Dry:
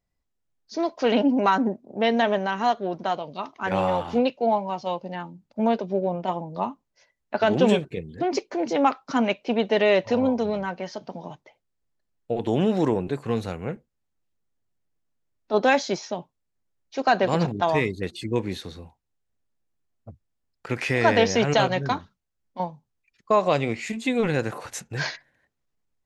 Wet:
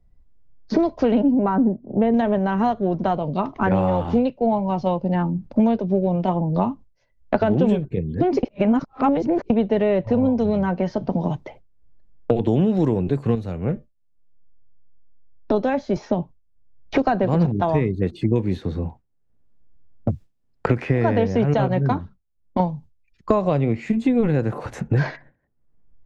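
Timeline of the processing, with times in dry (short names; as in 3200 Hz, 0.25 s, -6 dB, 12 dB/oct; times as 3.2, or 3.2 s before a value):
1.34–2.14 Bessel low-pass 1200 Hz
8.43–9.5 reverse
13.35–15.96 resonator 600 Hz, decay 0.2 s
whole clip: gate with hold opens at -46 dBFS; tilt -4 dB/oct; three-band squash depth 100%; gain -2.5 dB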